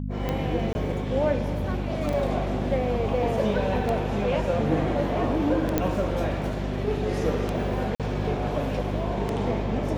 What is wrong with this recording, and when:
hum 50 Hz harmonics 5 -30 dBFS
tick 33 1/3 rpm -15 dBFS
0.73–0.75 s: dropout 20 ms
2.13 s: dropout 4.3 ms
5.78 s: pop -9 dBFS
7.95–8.00 s: dropout 47 ms

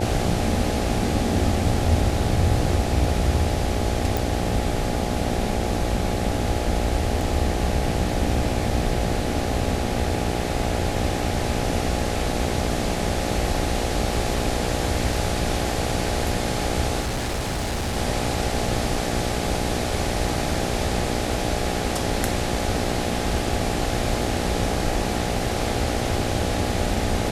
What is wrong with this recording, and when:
buzz 60 Hz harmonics 14 -28 dBFS
4.17 s: pop
17.00–17.97 s: clipped -22 dBFS

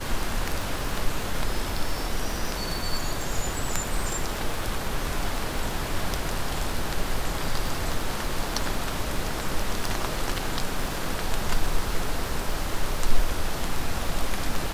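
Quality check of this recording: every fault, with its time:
crackle 67 per s -30 dBFS

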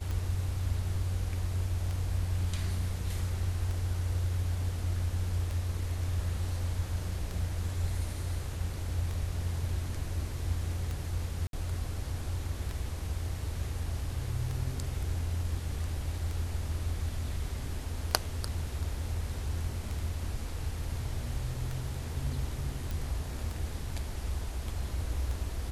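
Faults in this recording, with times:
tick 33 1/3 rpm
11.47–11.53 s: dropout 62 ms
22.91 s: pop

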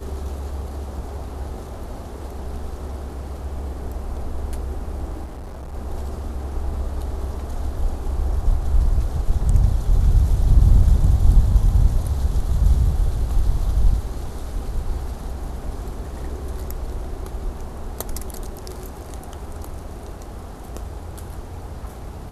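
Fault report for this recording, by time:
5.24–5.75 s: clipped -30.5 dBFS

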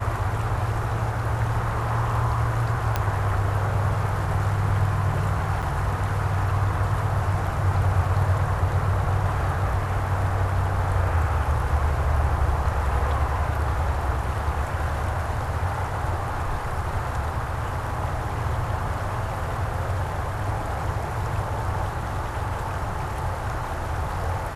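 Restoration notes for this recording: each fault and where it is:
2.96 s: pop -9 dBFS
5.62–5.63 s: dropout 6.9 ms

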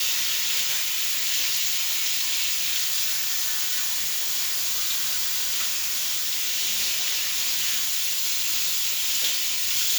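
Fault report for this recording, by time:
3.91–7.50 s: clipped -20 dBFS

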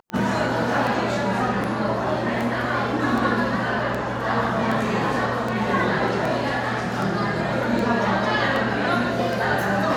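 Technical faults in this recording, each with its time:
tick 78 rpm -15 dBFS

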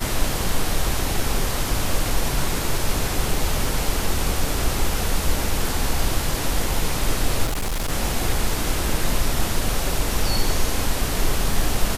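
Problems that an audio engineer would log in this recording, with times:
7.45–7.92 s: clipped -20.5 dBFS

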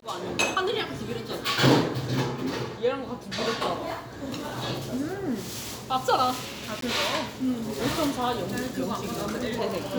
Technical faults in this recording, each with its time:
6.81–6.82 s: dropout 13 ms

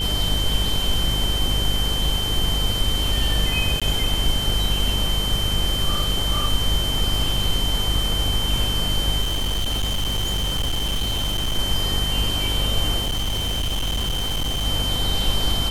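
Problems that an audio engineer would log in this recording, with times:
buzz 50 Hz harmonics 27 -26 dBFS
crackle 26 per s -27 dBFS
whine 3.1 kHz -24 dBFS
3.80–3.82 s: dropout 16 ms
9.21–11.59 s: clipped -19 dBFS
13.01–14.67 s: clipped -20 dBFS

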